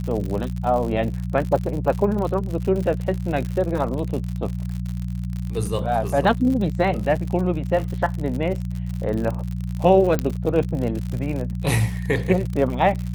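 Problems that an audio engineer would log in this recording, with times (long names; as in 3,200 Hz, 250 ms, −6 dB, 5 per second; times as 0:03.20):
surface crackle 76 per second −27 dBFS
mains hum 60 Hz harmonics 3 −27 dBFS
0:10.19: click −9 dBFS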